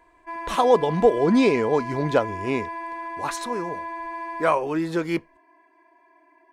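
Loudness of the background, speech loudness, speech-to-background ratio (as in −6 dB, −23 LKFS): −33.0 LKFS, −23.0 LKFS, 10.0 dB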